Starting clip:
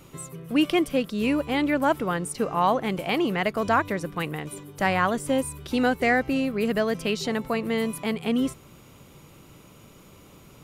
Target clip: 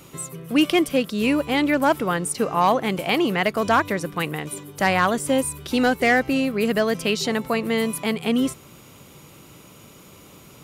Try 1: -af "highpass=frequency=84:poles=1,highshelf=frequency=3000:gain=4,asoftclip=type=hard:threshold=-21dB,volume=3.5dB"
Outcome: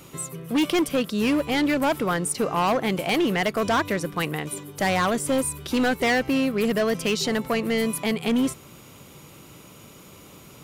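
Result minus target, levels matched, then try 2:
hard clipping: distortion +15 dB
-af "highpass=frequency=84:poles=1,highshelf=frequency=3000:gain=4,asoftclip=type=hard:threshold=-13.5dB,volume=3.5dB"

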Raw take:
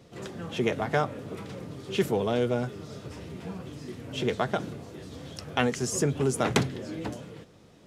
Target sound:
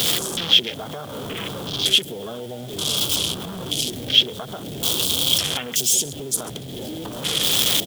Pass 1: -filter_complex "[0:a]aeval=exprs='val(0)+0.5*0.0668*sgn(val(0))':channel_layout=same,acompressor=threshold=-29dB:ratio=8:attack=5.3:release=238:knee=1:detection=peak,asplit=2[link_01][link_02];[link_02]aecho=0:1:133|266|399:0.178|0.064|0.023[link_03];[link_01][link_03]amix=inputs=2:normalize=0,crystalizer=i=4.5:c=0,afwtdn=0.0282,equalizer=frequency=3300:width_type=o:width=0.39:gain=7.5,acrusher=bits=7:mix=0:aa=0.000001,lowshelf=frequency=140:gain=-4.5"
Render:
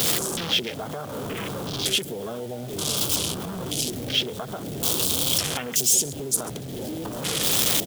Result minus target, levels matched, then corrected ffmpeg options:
4,000 Hz band −3.0 dB
-filter_complex "[0:a]aeval=exprs='val(0)+0.5*0.0668*sgn(val(0))':channel_layout=same,acompressor=threshold=-29dB:ratio=8:attack=5.3:release=238:knee=1:detection=peak,asplit=2[link_01][link_02];[link_02]aecho=0:1:133|266|399:0.178|0.064|0.023[link_03];[link_01][link_03]amix=inputs=2:normalize=0,crystalizer=i=4.5:c=0,afwtdn=0.0282,equalizer=frequency=3300:width_type=o:width=0.39:gain=17.5,acrusher=bits=7:mix=0:aa=0.000001,lowshelf=frequency=140:gain=-4.5"

